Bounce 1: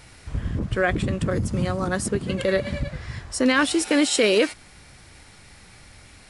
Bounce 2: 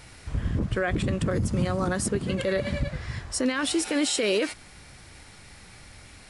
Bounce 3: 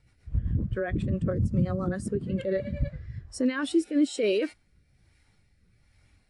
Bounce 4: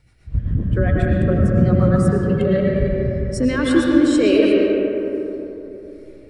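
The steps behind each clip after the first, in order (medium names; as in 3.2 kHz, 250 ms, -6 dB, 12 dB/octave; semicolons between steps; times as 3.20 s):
peak limiter -16.5 dBFS, peak gain reduction 9.5 dB
rotary cabinet horn 7.5 Hz, later 1.2 Hz, at 2.12 s; spectral contrast expander 1.5:1
reverberation RT60 3.3 s, pre-delay 70 ms, DRR -3 dB; trim +6.5 dB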